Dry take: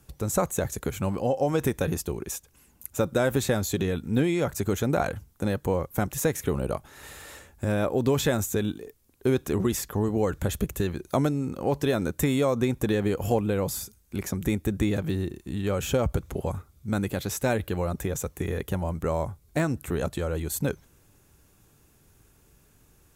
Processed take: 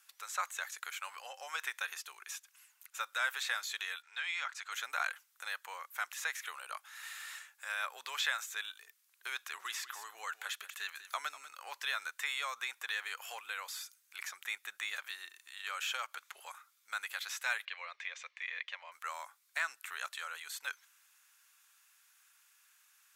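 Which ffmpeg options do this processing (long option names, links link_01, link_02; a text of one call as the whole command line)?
ffmpeg -i in.wav -filter_complex "[0:a]asettb=1/sr,asplit=3[link_01][link_02][link_03];[link_01]atrim=end=4.024[link_04];[link_02]atrim=start=4.02:end=4.72,asetpts=PTS-STARTPTS,afade=type=in:duration=0.004:curve=qsin,afade=type=out:start_time=0.696:duration=0.004:curve=qsin,highpass=700,lowpass=5000[link_05];[link_03]atrim=start=4.716[link_06];[link_04][link_05]acrossfade=duration=0.004:curve1=hsin:curve2=qsin[link_07];[link_07][link_06]acrossfade=duration=0.004:curve1=qsin:curve2=hsin,asettb=1/sr,asplit=3[link_08][link_09][link_10];[link_08]atrim=end=9.374[link_11];[link_09]atrim=start=9.37:end=11.57,asetpts=PTS-STARTPTS,afade=type=in:duration=0.004:curve=qsin,afade=type=out:start_time=2.196:duration=0.004:curve=qsin,aecho=1:1:194:0.188,atrim=end_sample=97020[link_12];[link_10]atrim=start=11.566[link_13];[link_11][link_12]acrossfade=duration=0.004:curve1=hsin:curve2=qsin[link_14];[link_14][link_13]acrossfade=duration=0.004:curve1=qsin:curve2=hsin,asettb=1/sr,asplit=3[link_15][link_16][link_17];[link_15]atrim=end=17.654[link_18];[link_16]atrim=start=17.65:end=18.92,asetpts=PTS-STARTPTS,afade=type=in:duration=0.004:curve=qsin,afade=type=out:start_time=1.266:duration=0.004:curve=qsin,highpass=frequency=470:width=0.5412,highpass=frequency=470:width=1.3066,equalizer=frequency=520:width_type=q:width=4:gain=4,equalizer=frequency=820:width_type=q:width=4:gain=-7,equalizer=frequency=1400:width_type=q:width=4:gain=-9,equalizer=frequency=2200:width_type=q:width=4:gain=7,lowpass=frequency=4400:width=0.5412,lowpass=frequency=4400:width=1.3066[link_19];[link_17]atrim=start=18.916[link_20];[link_18][link_19]acrossfade=duration=0.004:curve1=hsin:curve2=qsin[link_21];[link_21][link_20]acrossfade=duration=0.004:curve1=qsin:curve2=hsin,acrossover=split=4900[link_22][link_23];[link_23]acompressor=threshold=-44dB:ratio=4:attack=1:release=60[link_24];[link_22][link_24]amix=inputs=2:normalize=0,highpass=frequency=1300:width=0.5412,highpass=frequency=1300:width=1.3066,highshelf=frequency=6200:gain=-5.5,volume=1.5dB" out.wav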